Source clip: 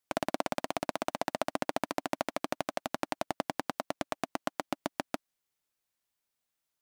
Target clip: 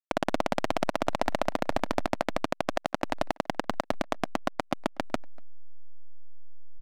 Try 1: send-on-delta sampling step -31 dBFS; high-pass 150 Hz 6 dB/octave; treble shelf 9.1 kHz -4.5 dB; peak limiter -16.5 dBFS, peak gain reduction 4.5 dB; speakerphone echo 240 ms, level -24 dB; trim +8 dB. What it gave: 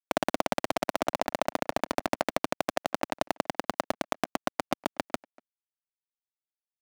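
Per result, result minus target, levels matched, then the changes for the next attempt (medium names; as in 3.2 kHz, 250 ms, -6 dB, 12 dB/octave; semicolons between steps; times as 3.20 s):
8 kHz band +4.5 dB; 125 Hz band -3.5 dB
change: treble shelf 9.1 kHz -16.5 dB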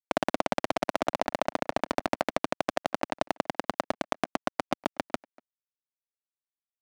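125 Hz band -3.0 dB
remove: high-pass 150 Hz 6 dB/octave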